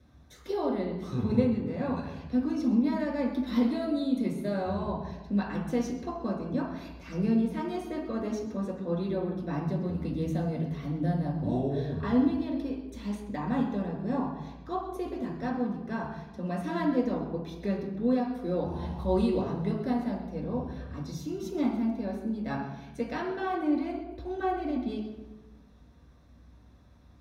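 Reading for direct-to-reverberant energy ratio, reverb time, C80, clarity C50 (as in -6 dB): -2.5 dB, 1.1 s, 6.5 dB, 4.5 dB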